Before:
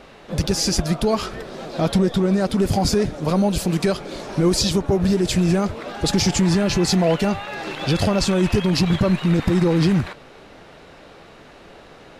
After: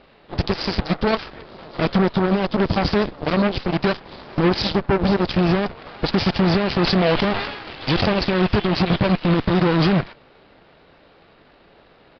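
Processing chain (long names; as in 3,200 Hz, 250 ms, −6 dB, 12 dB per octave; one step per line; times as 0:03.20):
harmonic generator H 3 −24 dB, 7 −15 dB, 8 −18 dB, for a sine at −8.5 dBFS
downsampling to 11,025 Hz
0:06.78–0:08.14: level that may fall only so fast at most 55 dB per second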